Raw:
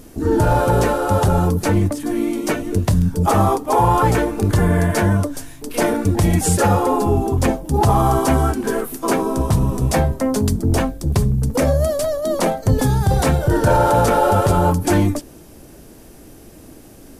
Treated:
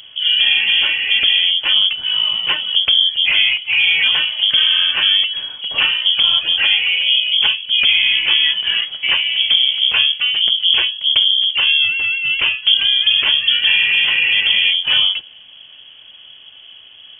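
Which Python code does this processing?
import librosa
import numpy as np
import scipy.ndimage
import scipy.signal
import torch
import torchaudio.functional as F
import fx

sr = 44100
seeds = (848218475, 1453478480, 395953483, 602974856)

p1 = fx.rider(x, sr, range_db=10, speed_s=0.5)
p2 = x + (p1 * librosa.db_to_amplitude(-0.5))
p3 = fx.freq_invert(p2, sr, carrier_hz=3300)
y = p3 * librosa.db_to_amplitude(-5.0)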